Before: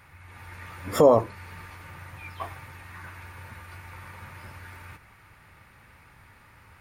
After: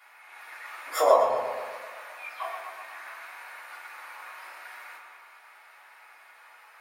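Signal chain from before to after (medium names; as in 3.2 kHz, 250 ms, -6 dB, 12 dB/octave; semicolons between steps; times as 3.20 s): high-pass 620 Hz 24 dB/octave; on a send: tape echo 122 ms, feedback 65%, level -5.5 dB, low-pass 5.1 kHz; on the sum: simulated room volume 180 m³, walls furnished, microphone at 3.3 m; trim -4.5 dB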